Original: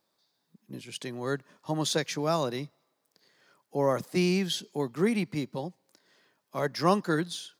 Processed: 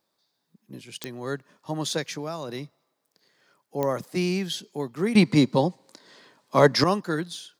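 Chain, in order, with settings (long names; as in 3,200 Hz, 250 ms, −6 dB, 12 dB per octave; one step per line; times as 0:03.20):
0:02.09–0:02.49: downward compressor 6 to 1, threshold −29 dBFS, peak gain reduction 7.5 dB
0:05.15–0:06.84: octave-band graphic EQ 125/250/500/1,000/2,000/4,000/8,000 Hz +10/+11/+9/+11/+6/+11/+10 dB
digital clicks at 0:01.04/0:03.83, −13 dBFS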